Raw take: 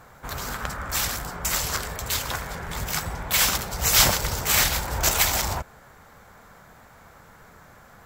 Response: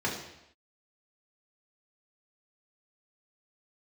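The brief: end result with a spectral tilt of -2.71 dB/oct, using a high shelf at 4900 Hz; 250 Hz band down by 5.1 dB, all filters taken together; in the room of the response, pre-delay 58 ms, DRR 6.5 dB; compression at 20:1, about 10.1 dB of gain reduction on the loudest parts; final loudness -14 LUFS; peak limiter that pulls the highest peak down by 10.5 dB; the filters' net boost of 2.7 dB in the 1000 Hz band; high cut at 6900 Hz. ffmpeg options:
-filter_complex "[0:a]lowpass=6.9k,equalizer=f=250:t=o:g=-8.5,equalizer=f=1k:t=o:g=4,highshelf=f=4.9k:g=-3.5,acompressor=threshold=-25dB:ratio=20,alimiter=level_in=0.5dB:limit=-24dB:level=0:latency=1,volume=-0.5dB,asplit=2[a][b];[1:a]atrim=start_sample=2205,adelay=58[c];[b][c]afir=irnorm=-1:irlink=0,volume=-15.5dB[d];[a][d]amix=inputs=2:normalize=0,volume=19dB"

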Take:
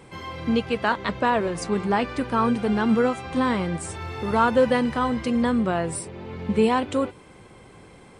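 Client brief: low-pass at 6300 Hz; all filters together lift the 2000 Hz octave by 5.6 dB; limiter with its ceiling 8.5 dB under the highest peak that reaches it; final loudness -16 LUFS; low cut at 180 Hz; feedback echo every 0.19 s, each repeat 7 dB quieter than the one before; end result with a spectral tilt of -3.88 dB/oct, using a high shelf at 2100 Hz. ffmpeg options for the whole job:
-af "highpass=180,lowpass=6.3k,equalizer=f=2k:t=o:g=9,highshelf=f=2.1k:g=-3,alimiter=limit=-14dB:level=0:latency=1,aecho=1:1:190|380|570|760|950:0.447|0.201|0.0905|0.0407|0.0183,volume=9dB"

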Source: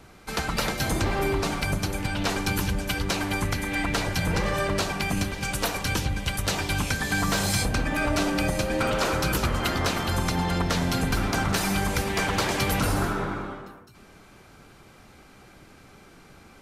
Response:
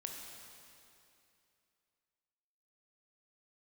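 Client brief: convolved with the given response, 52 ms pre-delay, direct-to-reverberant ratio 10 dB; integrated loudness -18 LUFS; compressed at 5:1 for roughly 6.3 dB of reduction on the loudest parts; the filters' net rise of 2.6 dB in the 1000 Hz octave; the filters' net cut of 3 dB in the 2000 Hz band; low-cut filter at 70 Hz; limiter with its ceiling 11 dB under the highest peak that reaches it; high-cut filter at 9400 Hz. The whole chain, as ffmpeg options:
-filter_complex "[0:a]highpass=70,lowpass=9.4k,equalizer=f=1k:t=o:g=5,equalizer=f=2k:t=o:g=-6,acompressor=threshold=-28dB:ratio=5,alimiter=level_in=3dB:limit=-24dB:level=0:latency=1,volume=-3dB,asplit=2[a][b];[1:a]atrim=start_sample=2205,adelay=52[c];[b][c]afir=irnorm=-1:irlink=0,volume=-8.5dB[d];[a][d]amix=inputs=2:normalize=0,volume=17.5dB"

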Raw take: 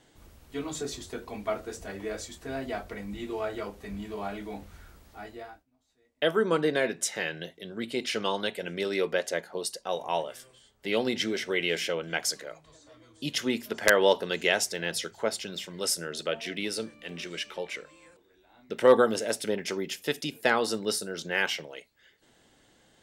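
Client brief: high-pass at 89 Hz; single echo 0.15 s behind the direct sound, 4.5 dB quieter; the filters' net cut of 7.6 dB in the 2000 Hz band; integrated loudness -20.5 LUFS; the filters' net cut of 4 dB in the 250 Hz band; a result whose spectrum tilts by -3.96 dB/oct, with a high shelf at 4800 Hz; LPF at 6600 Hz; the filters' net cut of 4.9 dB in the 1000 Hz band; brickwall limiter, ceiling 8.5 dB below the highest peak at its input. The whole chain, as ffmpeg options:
-af "highpass=89,lowpass=6.6k,equalizer=f=250:t=o:g=-5,equalizer=f=1k:t=o:g=-4,equalizer=f=2k:t=o:g=-7,highshelf=f=4.8k:g=-9,alimiter=limit=-19.5dB:level=0:latency=1,aecho=1:1:150:0.596,volume=14dB"

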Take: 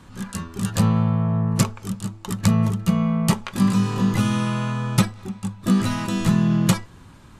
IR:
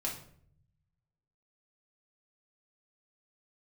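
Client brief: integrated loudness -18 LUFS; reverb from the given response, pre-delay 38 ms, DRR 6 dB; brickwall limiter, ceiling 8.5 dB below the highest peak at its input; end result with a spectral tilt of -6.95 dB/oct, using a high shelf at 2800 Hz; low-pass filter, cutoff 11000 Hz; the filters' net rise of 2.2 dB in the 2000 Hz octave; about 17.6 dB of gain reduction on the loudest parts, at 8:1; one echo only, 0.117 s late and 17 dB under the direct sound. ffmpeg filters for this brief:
-filter_complex "[0:a]lowpass=11k,equalizer=f=2k:t=o:g=5.5,highshelf=f=2.8k:g=-6.5,acompressor=threshold=-32dB:ratio=8,alimiter=level_in=4dB:limit=-24dB:level=0:latency=1,volume=-4dB,aecho=1:1:117:0.141,asplit=2[a][b];[1:a]atrim=start_sample=2205,adelay=38[c];[b][c]afir=irnorm=-1:irlink=0,volume=-8.5dB[d];[a][d]amix=inputs=2:normalize=0,volume=18dB"

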